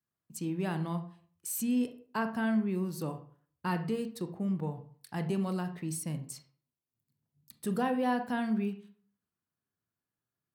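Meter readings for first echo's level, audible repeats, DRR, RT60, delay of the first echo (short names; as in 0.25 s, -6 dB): none, none, 7.5 dB, 0.50 s, none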